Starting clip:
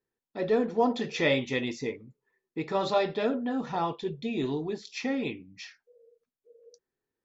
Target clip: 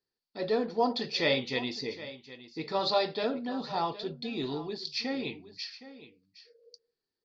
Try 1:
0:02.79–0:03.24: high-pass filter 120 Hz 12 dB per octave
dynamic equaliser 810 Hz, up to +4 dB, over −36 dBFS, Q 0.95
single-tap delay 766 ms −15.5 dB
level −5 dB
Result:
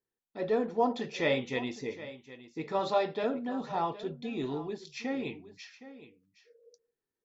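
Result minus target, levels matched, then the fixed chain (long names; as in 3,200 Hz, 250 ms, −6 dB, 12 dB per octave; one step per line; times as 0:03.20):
4,000 Hz band −8.5 dB
0:02.79–0:03.24: high-pass filter 120 Hz 12 dB per octave
dynamic equaliser 810 Hz, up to +4 dB, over −36 dBFS, Q 0.95
low-pass with resonance 4,600 Hz, resonance Q 9.5
single-tap delay 766 ms −15.5 dB
level −5 dB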